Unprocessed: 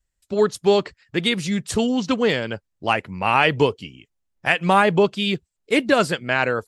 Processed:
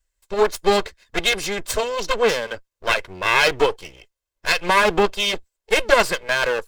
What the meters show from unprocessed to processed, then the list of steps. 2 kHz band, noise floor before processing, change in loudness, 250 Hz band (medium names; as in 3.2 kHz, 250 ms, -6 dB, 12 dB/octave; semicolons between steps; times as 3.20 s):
+2.5 dB, -76 dBFS, +0.5 dB, -8.5 dB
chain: comb filter that takes the minimum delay 1.9 ms; peaking EQ 130 Hz -12.5 dB 1.8 oct; trim +4.5 dB